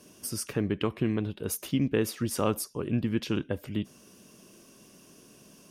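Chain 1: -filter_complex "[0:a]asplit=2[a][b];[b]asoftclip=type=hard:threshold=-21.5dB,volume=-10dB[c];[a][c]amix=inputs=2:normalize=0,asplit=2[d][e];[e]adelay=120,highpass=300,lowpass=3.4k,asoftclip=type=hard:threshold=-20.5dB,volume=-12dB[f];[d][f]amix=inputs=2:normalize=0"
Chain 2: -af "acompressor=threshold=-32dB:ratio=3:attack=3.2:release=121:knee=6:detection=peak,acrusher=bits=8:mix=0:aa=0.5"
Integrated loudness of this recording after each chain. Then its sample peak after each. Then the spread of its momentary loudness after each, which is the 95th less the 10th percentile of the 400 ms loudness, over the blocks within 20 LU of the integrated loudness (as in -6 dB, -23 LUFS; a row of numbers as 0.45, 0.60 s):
-28.5, -37.0 LUFS; -12.0, -20.5 dBFS; 6, 18 LU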